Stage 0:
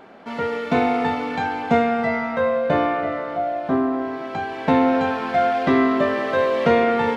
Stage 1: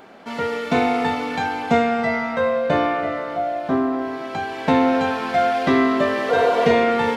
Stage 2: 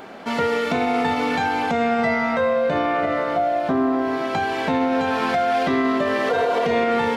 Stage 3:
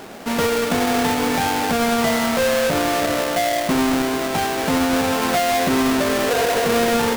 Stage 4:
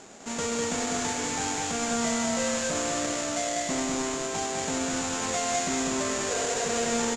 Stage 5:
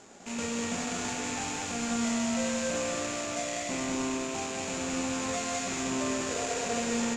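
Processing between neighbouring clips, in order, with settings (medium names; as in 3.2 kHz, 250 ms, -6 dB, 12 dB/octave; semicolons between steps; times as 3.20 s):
spectral replace 6.32–6.72 s, 450–1500 Hz after; treble shelf 4.6 kHz +11 dB
compression 2.5:1, threshold -24 dBFS, peak gain reduction 8.5 dB; peak limiter -18 dBFS, peak gain reduction 7 dB; trim +6 dB
square wave that keeps the level; trim -2.5 dB
four-pole ladder low-pass 7.4 kHz, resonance 80%; loudspeakers at several distances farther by 69 m -4 dB, 84 m -9 dB
rattle on loud lows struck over -44 dBFS, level -26 dBFS; on a send at -4 dB: reverberation RT60 1.1 s, pre-delay 3 ms; on the sum: trim -5.5 dB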